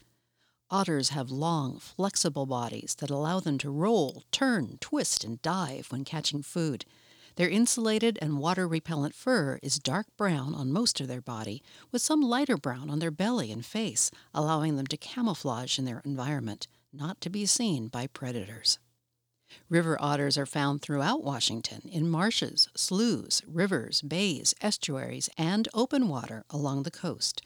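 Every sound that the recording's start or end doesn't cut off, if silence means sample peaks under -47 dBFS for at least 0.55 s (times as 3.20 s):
0.70–18.75 s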